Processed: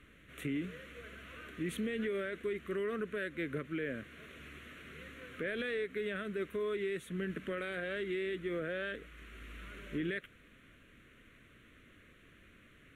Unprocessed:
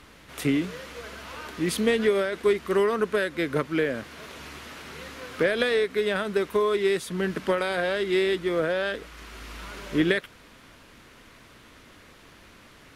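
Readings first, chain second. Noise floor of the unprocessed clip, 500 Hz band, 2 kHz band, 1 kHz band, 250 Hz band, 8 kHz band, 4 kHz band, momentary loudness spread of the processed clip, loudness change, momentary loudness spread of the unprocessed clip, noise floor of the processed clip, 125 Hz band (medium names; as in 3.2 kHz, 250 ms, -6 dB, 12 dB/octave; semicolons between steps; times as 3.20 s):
-52 dBFS, -13.5 dB, -11.0 dB, -16.5 dB, -11.0 dB, under -15 dB, -15.0 dB, 14 LU, -13.5 dB, 17 LU, -61 dBFS, -9.5 dB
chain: treble shelf 7.8 kHz -9 dB; static phaser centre 2.1 kHz, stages 4; peak limiter -21.5 dBFS, peak gain reduction 9.5 dB; trim -7 dB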